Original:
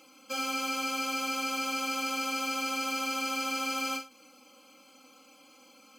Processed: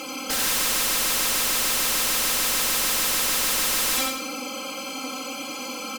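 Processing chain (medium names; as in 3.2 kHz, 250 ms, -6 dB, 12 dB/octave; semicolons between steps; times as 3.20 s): sine folder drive 19 dB, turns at -21.5 dBFS; feedback delay 90 ms, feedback 36%, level -3.5 dB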